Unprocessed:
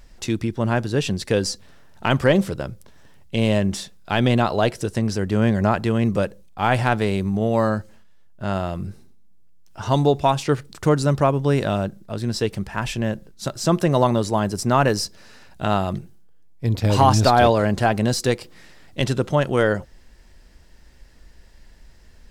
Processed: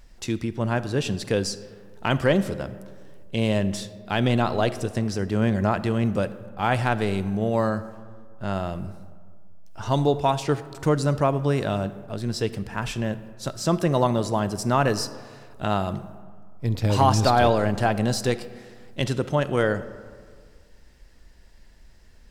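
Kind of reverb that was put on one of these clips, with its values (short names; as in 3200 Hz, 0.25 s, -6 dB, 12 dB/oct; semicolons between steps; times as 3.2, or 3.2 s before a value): digital reverb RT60 1.9 s, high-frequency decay 0.45×, pre-delay 5 ms, DRR 14 dB; gain -3.5 dB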